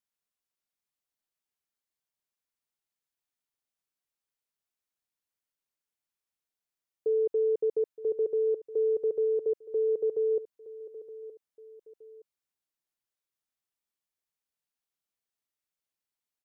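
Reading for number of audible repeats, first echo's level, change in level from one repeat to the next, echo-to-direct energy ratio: 2, -16.0 dB, -8.5 dB, -15.5 dB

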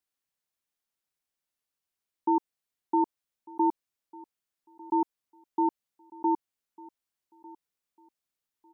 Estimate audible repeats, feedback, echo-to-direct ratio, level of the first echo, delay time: 2, 24%, -22.0 dB, -22.0 dB, 1.199 s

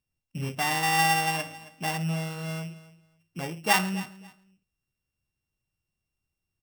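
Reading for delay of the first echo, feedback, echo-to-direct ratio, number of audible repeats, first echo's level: 0.271 s, 19%, -18.0 dB, 2, -18.0 dB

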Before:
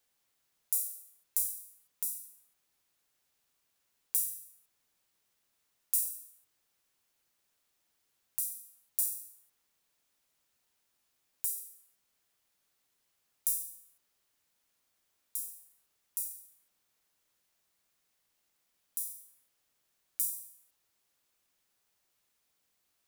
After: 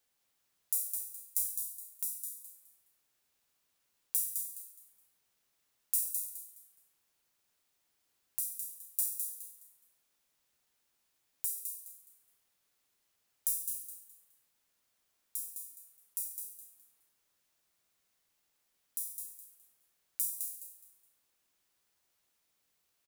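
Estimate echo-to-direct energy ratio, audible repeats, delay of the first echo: -5.0 dB, 3, 0.209 s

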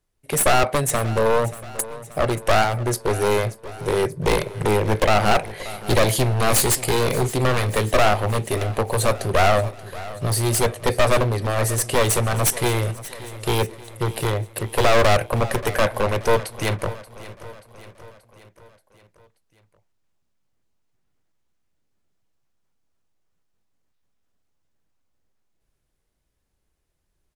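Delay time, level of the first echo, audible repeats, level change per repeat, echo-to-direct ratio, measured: 0.581 s, -17.0 dB, 4, -5.0 dB, -15.5 dB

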